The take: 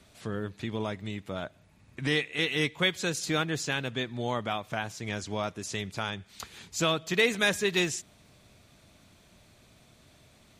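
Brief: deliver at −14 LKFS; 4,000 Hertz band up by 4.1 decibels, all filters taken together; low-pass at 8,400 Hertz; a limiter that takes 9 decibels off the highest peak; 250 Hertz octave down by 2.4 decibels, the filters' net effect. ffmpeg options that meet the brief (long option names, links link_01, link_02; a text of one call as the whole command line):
ffmpeg -i in.wav -af "lowpass=8400,equalizer=frequency=250:width_type=o:gain=-3.5,equalizer=frequency=4000:width_type=o:gain=5,volume=18dB,alimiter=limit=-1dB:level=0:latency=1" out.wav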